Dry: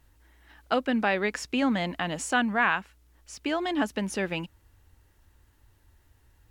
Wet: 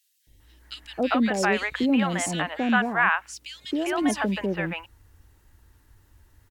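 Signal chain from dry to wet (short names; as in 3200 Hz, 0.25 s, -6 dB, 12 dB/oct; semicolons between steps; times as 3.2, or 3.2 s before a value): 1.56–3.75 HPF 80 Hz; three bands offset in time highs, lows, mids 0.27/0.4 s, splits 640/2900 Hz; gain +4.5 dB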